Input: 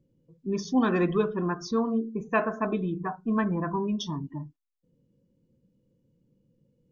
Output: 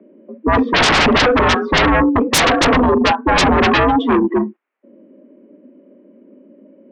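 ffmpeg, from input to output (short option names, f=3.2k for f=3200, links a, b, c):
-af "highpass=f=180:t=q:w=0.5412,highpass=f=180:t=q:w=1.307,lowpass=f=2.3k:t=q:w=0.5176,lowpass=f=2.3k:t=q:w=0.7071,lowpass=f=2.3k:t=q:w=1.932,afreqshift=63,aeval=exprs='0.282*sin(PI/2*10*val(0)/0.282)':c=same,volume=1.5dB"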